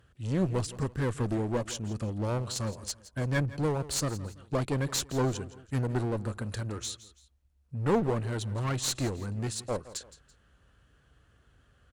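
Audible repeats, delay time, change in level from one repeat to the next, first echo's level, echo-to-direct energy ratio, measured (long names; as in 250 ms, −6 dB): 2, 167 ms, −8.5 dB, −17.0 dB, −16.5 dB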